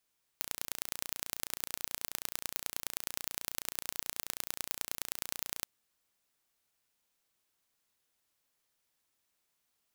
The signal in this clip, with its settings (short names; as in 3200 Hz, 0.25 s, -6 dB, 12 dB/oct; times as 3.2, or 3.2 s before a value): pulse train 29.3/s, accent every 3, -6 dBFS 5.25 s